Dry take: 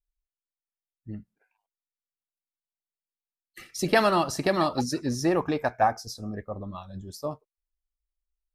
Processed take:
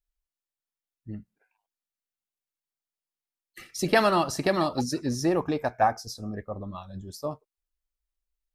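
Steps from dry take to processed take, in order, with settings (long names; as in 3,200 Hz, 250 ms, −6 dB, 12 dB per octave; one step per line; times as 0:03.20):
0:04.59–0:05.76: dynamic equaliser 1,700 Hz, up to −4 dB, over −37 dBFS, Q 0.71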